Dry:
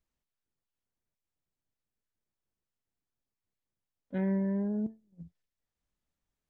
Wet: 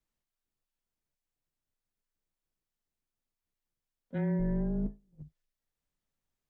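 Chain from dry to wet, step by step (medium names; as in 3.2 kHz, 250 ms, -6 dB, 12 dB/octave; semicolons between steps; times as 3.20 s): 4.38–5.22 s: octave divider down 2 oct, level -3 dB; frequency shift -18 Hz; trim -1 dB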